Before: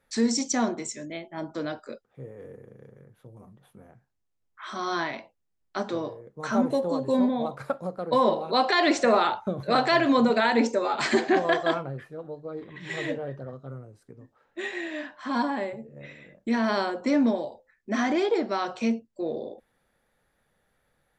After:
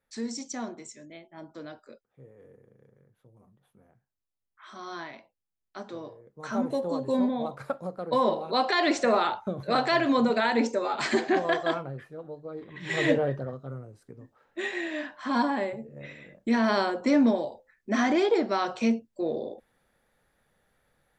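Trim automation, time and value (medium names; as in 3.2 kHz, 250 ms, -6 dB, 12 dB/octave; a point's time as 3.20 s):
5.83 s -10 dB
6.92 s -2.5 dB
12.67 s -2.5 dB
13.16 s +9 dB
13.60 s +1 dB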